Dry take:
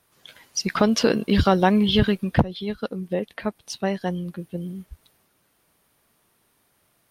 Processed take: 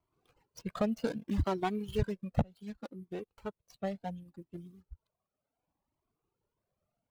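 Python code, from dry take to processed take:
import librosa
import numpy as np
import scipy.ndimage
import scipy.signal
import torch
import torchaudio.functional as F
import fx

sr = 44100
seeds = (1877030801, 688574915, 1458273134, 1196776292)

y = scipy.ndimage.median_filter(x, 25, mode='constant')
y = fx.dereverb_blind(y, sr, rt60_s=1.0)
y = fx.comb_cascade(y, sr, direction='rising', hz=0.67)
y = y * 10.0 ** (-6.5 / 20.0)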